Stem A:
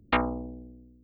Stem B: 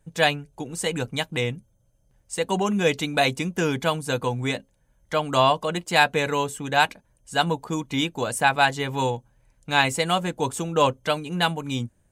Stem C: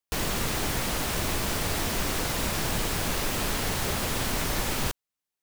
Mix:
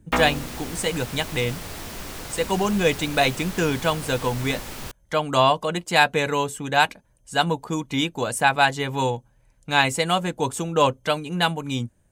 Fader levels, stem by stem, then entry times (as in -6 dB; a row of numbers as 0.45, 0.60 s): +1.5, +1.0, -7.0 dB; 0.00, 0.00, 0.00 s